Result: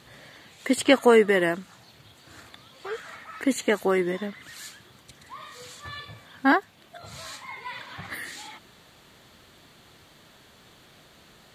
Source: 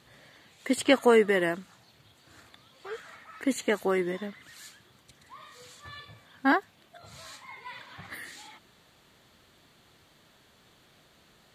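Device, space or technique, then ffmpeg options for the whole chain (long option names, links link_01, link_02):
parallel compression: -filter_complex "[0:a]asplit=2[link_01][link_02];[link_02]acompressor=threshold=-41dB:ratio=6,volume=-5.5dB[link_03];[link_01][link_03]amix=inputs=2:normalize=0,volume=3dB"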